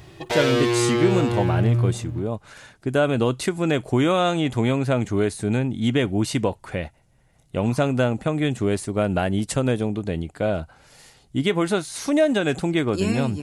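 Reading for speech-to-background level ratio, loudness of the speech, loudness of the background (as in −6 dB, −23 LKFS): −1.0 dB, −23.5 LKFS, −22.5 LKFS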